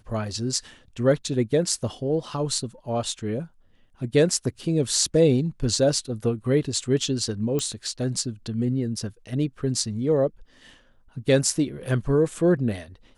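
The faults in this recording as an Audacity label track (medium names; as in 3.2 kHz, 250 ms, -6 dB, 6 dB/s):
7.590000	7.590000	pop -13 dBFS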